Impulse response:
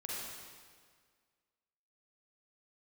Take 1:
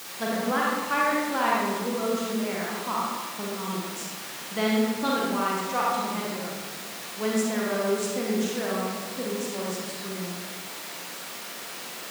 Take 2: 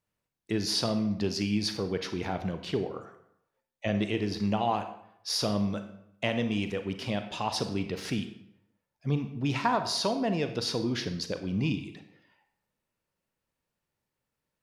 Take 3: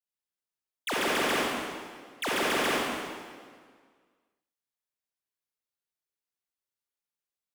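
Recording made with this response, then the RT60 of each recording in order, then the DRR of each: 3; 1.4, 0.75, 1.8 seconds; −4.5, 8.0, −6.0 decibels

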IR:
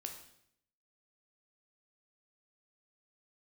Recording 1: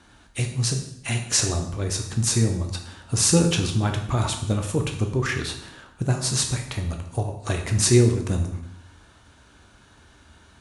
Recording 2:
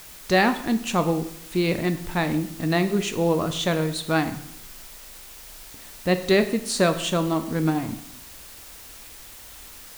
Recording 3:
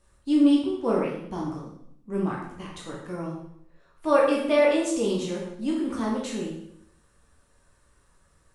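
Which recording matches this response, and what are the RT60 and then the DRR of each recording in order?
1; 0.70, 0.70, 0.70 seconds; 3.5, 9.0, −4.0 decibels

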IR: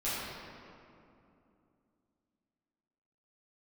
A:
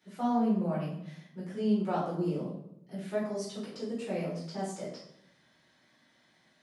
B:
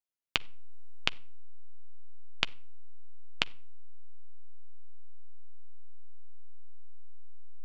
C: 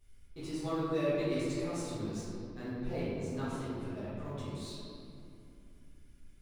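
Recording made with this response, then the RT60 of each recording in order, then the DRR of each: C; 0.75 s, non-exponential decay, 2.7 s; −9.5, 14.0, −12.5 decibels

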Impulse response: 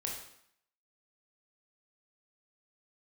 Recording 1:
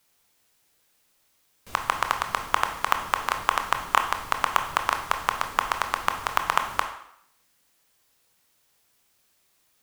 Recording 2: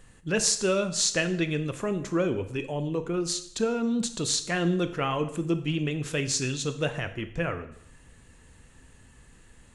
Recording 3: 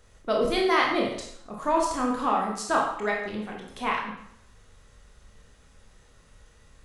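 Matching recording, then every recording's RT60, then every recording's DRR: 3; 0.70, 0.65, 0.70 seconds; 5.0, 9.5, −1.5 decibels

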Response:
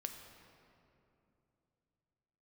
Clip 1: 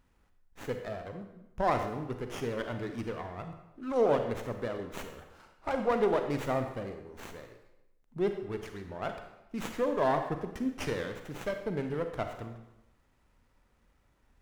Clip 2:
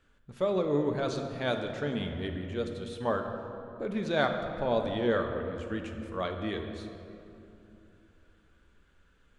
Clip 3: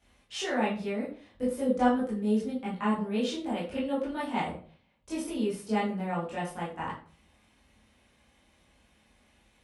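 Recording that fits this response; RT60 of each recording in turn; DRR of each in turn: 2; 0.85, 2.9, 0.45 seconds; 6.0, 4.5, −9.0 decibels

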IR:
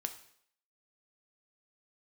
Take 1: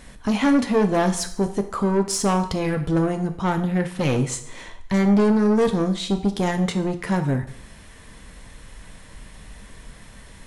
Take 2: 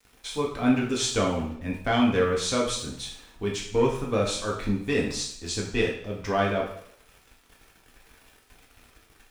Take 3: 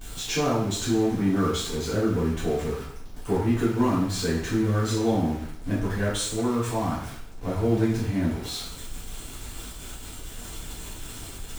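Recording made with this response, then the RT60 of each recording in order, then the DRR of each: 1; 0.65, 0.65, 0.65 seconds; 6.5, −3.0, −10.0 decibels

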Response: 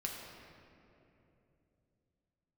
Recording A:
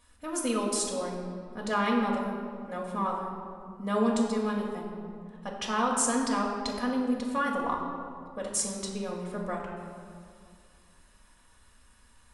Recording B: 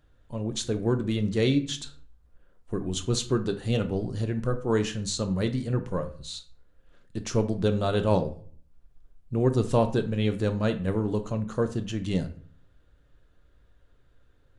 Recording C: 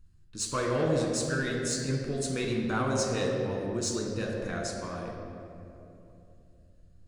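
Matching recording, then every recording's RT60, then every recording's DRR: C; 2.2, 0.50, 3.0 seconds; −3.5, 7.0, −1.5 decibels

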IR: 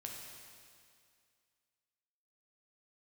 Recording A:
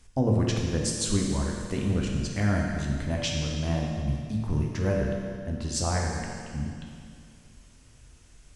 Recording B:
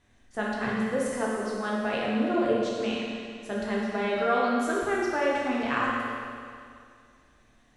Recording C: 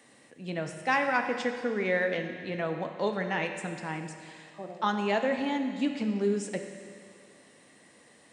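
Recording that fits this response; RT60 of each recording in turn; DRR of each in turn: A; 2.2, 2.2, 2.2 seconds; −1.0, −5.5, 5.0 decibels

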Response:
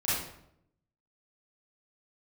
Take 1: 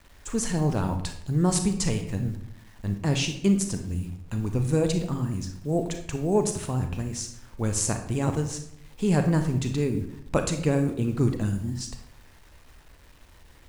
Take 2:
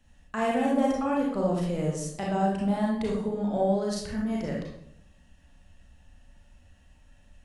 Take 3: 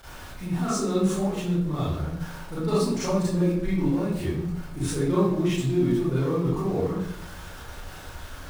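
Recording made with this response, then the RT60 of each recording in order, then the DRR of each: 3; 0.75, 0.75, 0.75 seconds; 6.0, −4.0, −11.5 decibels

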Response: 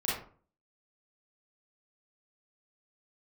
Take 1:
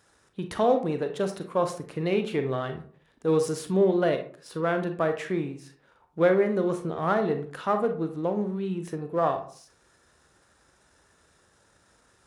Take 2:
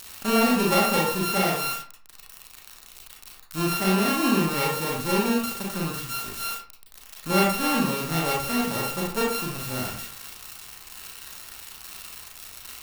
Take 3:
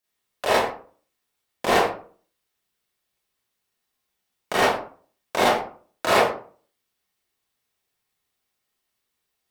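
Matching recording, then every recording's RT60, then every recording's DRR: 3; 0.45, 0.45, 0.45 seconds; 6.5, −3.0, −8.0 decibels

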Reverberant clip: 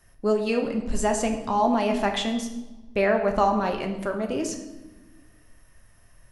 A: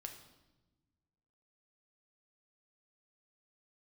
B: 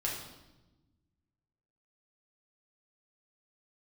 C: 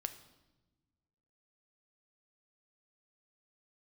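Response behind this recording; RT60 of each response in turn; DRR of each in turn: A; non-exponential decay, 1.1 s, non-exponential decay; 3.0, −5.0, 8.5 decibels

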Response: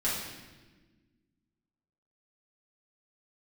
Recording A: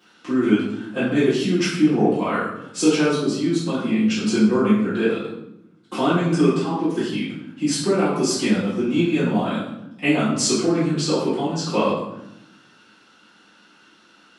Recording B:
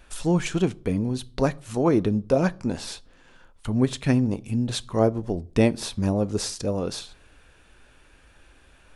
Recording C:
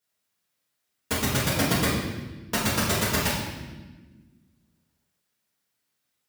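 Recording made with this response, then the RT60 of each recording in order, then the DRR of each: C; 0.85 s, non-exponential decay, 1.3 s; −12.5, 18.0, −9.0 decibels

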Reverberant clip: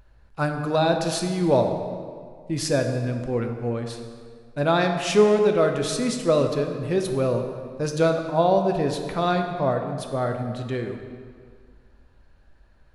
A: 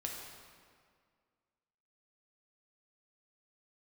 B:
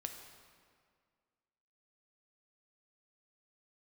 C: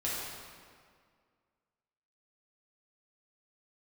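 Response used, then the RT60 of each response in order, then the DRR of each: B; 2.0, 2.0, 2.0 seconds; −1.0, 4.0, −8.0 decibels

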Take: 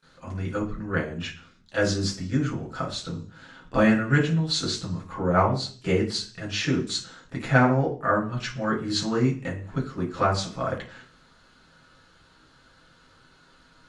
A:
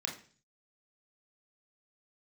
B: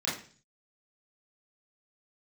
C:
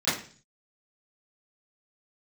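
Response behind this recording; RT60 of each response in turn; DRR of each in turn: C; 0.40, 0.40, 0.40 seconds; 0.0, −8.5, −18.0 decibels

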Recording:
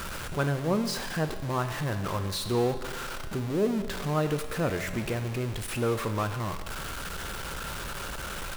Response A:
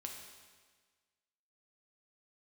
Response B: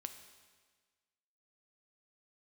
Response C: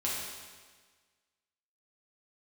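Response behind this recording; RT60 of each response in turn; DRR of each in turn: B; 1.5, 1.5, 1.5 seconds; 1.0, 7.0, −6.5 decibels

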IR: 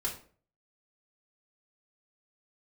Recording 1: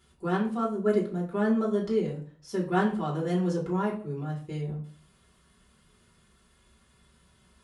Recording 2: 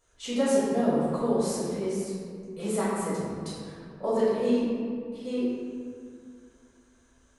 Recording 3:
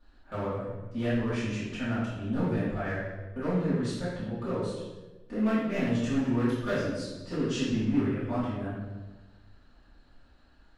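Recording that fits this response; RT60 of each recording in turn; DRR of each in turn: 1; 0.45, 2.1, 1.2 seconds; −4.0, −11.5, −14.5 decibels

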